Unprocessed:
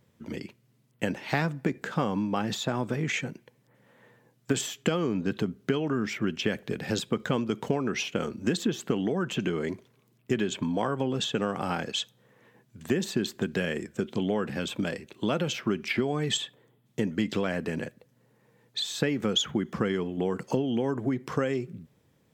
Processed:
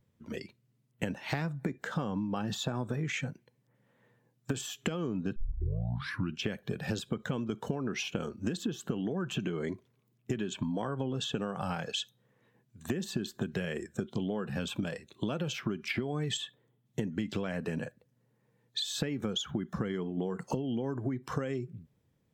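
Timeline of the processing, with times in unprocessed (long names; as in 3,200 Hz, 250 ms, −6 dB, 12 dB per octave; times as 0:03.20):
0:05.36: tape start 1.01 s
whole clip: noise reduction from a noise print of the clip's start 11 dB; low-shelf EQ 160 Hz +9 dB; downward compressor 4 to 1, threshold −31 dBFS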